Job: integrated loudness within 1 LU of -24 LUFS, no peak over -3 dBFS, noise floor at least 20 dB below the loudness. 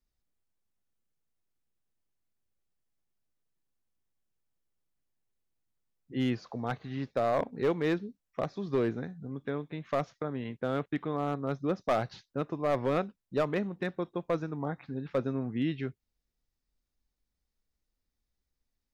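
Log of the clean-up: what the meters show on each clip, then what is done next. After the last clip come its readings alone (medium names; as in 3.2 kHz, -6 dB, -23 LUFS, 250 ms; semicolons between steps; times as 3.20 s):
clipped samples 0.3%; clipping level -21.0 dBFS; loudness -33.0 LUFS; peak level -21.0 dBFS; loudness target -24.0 LUFS
-> clip repair -21 dBFS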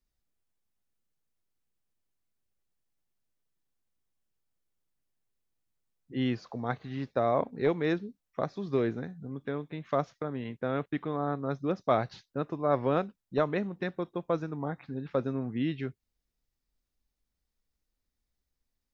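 clipped samples 0.0%; loudness -32.5 LUFS; peak level -12.0 dBFS; loudness target -24.0 LUFS
-> trim +8.5 dB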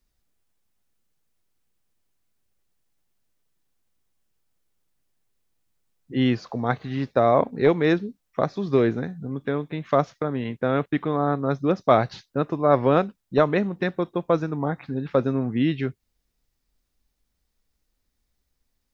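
loudness -24.0 LUFS; peak level -3.5 dBFS; noise floor -76 dBFS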